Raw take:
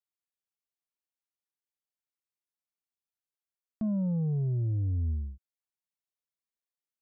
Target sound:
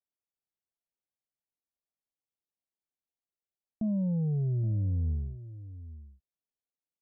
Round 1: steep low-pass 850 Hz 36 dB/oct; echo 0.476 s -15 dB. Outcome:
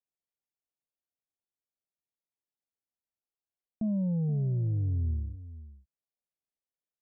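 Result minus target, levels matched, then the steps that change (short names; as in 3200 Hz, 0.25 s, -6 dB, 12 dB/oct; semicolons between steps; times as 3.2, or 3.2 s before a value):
echo 0.345 s early
change: echo 0.821 s -15 dB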